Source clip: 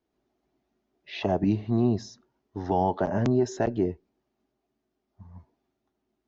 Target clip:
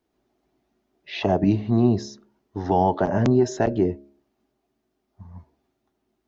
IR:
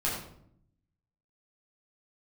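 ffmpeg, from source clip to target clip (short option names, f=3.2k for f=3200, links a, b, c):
-af "bandreject=f=69.86:t=h:w=4,bandreject=f=139.72:t=h:w=4,bandreject=f=209.58:t=h:w=4,bandreject=f=279.44:t=h:w=4,bandreject=f=349.3:t=h:w=4,bandreject=f=419.16:t=h:w=4,bandreject=f=489.02:t=h:w=4,bandreject=f=558.88:t=h:w=4,bandreject=f=628.74:t=h:w=4,volume=5dB"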